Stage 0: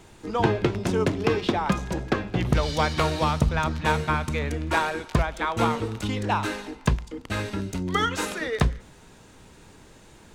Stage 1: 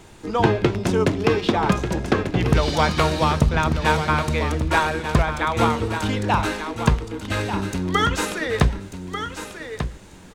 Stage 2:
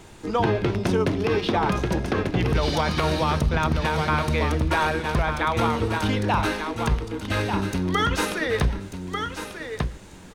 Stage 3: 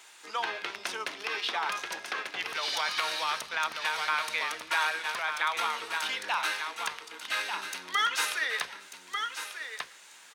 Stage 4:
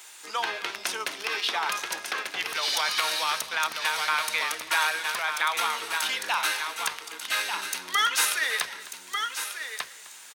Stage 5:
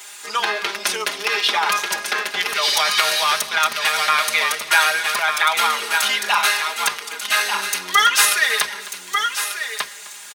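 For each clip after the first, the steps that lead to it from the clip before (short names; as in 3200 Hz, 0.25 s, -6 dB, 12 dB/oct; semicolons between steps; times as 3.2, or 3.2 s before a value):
feedback echo 1.191 s, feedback 15%, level -9 dB; gain +4 dB
dynamic EQ 7400 Hz, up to -8 dB, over -56 dBFS, Q 4.3; limiter -12.5 dBFS, peak gain reduction 10 dB
HPF 1400 Hz 12 dB/oct
high shelf 7200 Hz +12 dB; echo 0.257 s -18 dB; gain +2.5 dB
comb 4.9 ms, depth 85%; gain +6.5 dB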